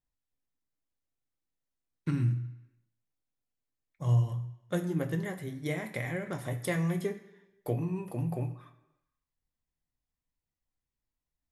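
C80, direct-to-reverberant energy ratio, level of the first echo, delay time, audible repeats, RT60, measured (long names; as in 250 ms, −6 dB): 14.5 dB, 5.0 dB, no echo audible, no echo audible, no echo audible, 1.0 s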